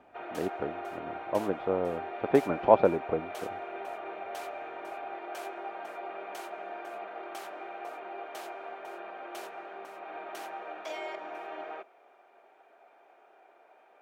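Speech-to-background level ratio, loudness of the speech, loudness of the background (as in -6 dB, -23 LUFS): 11.5 dB, -29.0 LUFS, -40.5 LUFS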